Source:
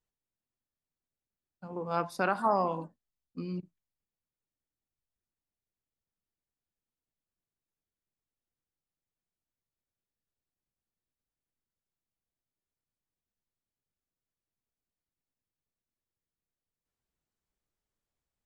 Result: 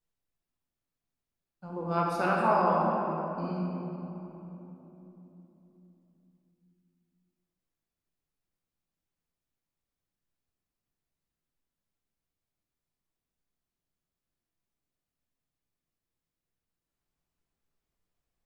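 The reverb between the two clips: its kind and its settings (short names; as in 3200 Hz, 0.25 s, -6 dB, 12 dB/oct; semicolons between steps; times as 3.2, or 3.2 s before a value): shoebox room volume 210 m³, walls hard, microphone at 0.82 m; gain -2.5 dB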